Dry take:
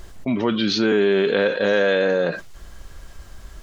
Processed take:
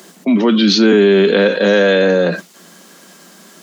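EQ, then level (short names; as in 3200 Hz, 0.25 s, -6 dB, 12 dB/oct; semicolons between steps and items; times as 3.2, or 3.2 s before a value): steep high-pass 170 Hz 96 dB/oct; low shelf 260 Hz +11 dB; high shelf 3700 Hz +8 dB; +4.0 dB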